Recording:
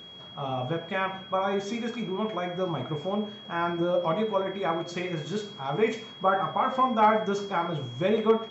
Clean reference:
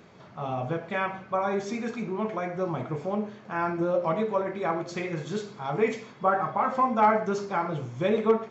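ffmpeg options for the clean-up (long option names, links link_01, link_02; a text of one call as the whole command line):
ffmpeg -i in.wav -af "bandreject=frequency=3300:width=30" out.wav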